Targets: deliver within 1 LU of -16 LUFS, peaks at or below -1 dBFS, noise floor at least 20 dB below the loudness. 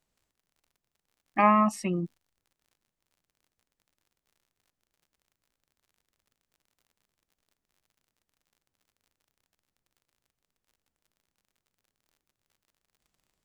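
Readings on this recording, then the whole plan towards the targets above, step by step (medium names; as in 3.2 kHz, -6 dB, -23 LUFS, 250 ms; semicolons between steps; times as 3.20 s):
tick rate 44 per s; loudness -25.5 LUFS; peak level -8.5 dBFS; loudness target -16.0 LUFS
-> de-click; trim +9.5 dB; peak limiter -1 dBFS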